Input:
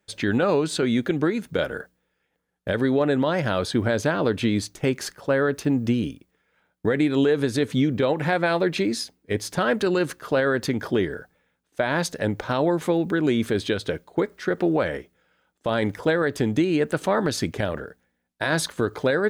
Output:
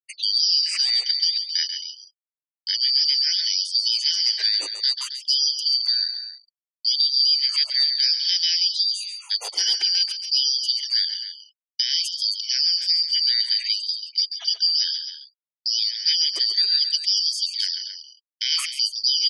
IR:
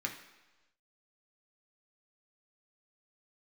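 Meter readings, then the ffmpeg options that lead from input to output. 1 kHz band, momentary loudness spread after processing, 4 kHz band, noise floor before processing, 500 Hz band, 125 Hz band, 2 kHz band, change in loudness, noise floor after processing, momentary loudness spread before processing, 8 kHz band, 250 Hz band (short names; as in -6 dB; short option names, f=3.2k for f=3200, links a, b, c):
under -20 dB, 8 LU, +18.5 dB, -75 dBFS, under -30 dB, under -40 dB, -10.0 dB, +4.5 dB, under -85 dBFS, 8 LU, +7.0 dB, under -40 dB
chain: -af "afftfilt=real='real(if(lt(b,272),68*(eq(floor(b/68),0)*3+eq(floor(b/68),1)*2+eq(floor(b/68),2)*1+eq(floor(b/68),3)*0)+mod(b,68),b),0)':imag='imag(if(lt(b,272),68*(eq(floor(b/68),0)*3+eq(floor(b/68),1)*2+eq(floor(b/68),2)*1+eq(floor(b/68),3)*0)+mod(b,68),b),0)':win_size=2048:overlap=0.75,afftfilt=real='re*gte(hypot(re,im),0.0126)':imag='im*gte(hypot(re,im),0.0126)':win_size=1024:overlap=0.75,agate=range=-33dB:threshold=-42dB:ratio=3:detection=peak,aecho=1:1:137|268.2:0.316|0.251,afftfilt=real='re*gte(b*sr/1024,260*pow(3200/260,0.5+0.5*sin(2*PI*0.59*pts/sr)))':imag='im*gte(b*sr/1024,260*pow(3200/260,0.5+0.5*sin(2*PI*0.59*pts/sr)))':win_size=1024:overlap=0.75"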